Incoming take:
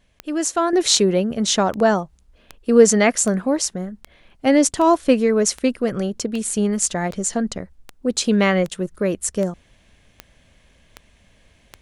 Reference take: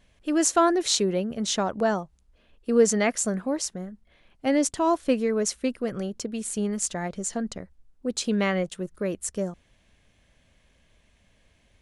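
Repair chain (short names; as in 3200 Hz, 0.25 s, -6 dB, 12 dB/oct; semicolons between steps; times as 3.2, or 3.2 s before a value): de-click; gain 0 dB, from 0.73 s -7.5 dB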